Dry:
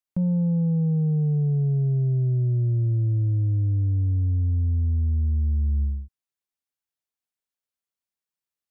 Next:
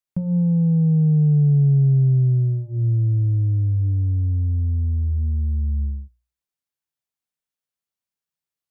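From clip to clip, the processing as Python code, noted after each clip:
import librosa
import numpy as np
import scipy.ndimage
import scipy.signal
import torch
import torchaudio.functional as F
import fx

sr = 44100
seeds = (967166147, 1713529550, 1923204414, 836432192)

y = fx.peak_eq(x, sr, hz=140.0, db=7.0, octaves=0.76)
y = fx.hum_notches(y, sr, base_hz=60, count=6)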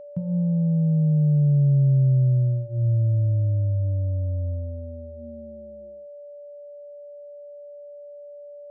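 y = fx.filter_sweep_highpass(x, sr, from_hz=110.0, to_hz=560.0, start_s=4.5, end_s=6.31, q=1.9)
y = y + 10.0 ** (-31.0 / 20.0) * np.sin(2.0 * np.pi * 580.0 * np.arange(len(y)) / sr)
y = y * librosa.db_to_amplitude(-7.5)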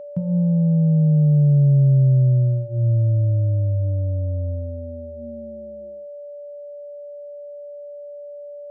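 y = fx.low_shelf(x, sr, hz=67.0, db=-10.0)
y = y * librosa.db_to_amplitude(5.5)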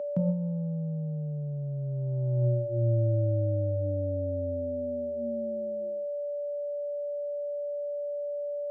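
y = scipy.signal.sosfilt(scipy.signal.butter(2, 210.0, 'highpass', fs=sr, output='sos'), x)
y = fx.over_compress(y, sr, threshold_db=-26.0, ratio=-0.5)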